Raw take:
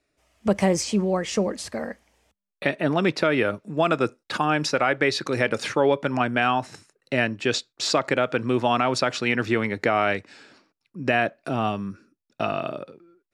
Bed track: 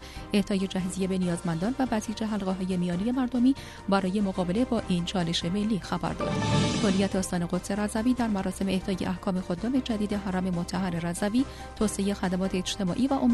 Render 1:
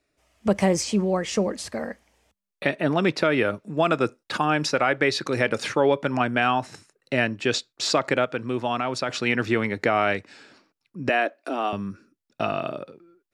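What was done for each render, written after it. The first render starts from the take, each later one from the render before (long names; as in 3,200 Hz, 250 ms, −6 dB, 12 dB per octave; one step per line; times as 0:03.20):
0:08.25–0:09.09: clip gain −4.5 dB
0:11.09–0:11.73: Chebyshev high-pass filter 270 Hz, order 4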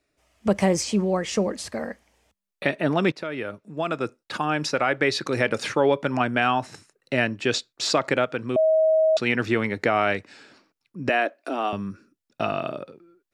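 0:03.12–0:05.16: fade in, from −12 dB
0:08.56–0:09.17: beep over 635 Hz −15.5 dBFS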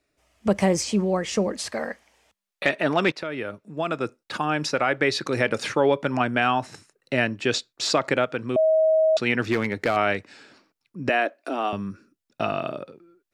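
0:01.59–0:03.23: mid-hump overdrive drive 9 dB, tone 7,500 Hz, clips at −8 dBFS
0:09.46–0:09.97: gain into a clipping stage and back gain 16 dB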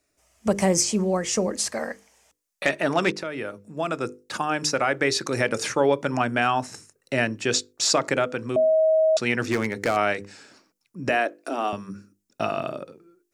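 high shelf with overshoot 4,900 Hz +6.5 dB, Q 1.5
mains-hum notches 50/100/150/200/250/300/350/400/450/500 Hz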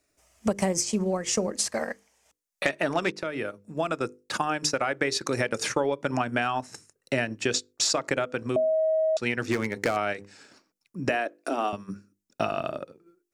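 downward compressor 4 to 1, threshold −23 dBFS, peak gain reduction 7 dB
transient designer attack +2 dB, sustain −7 dB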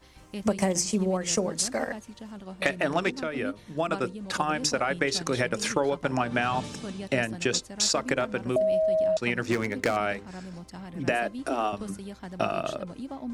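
mix in bed track −12.5 dB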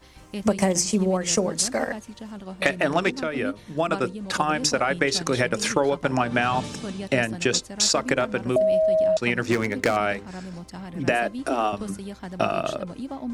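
level +4 dB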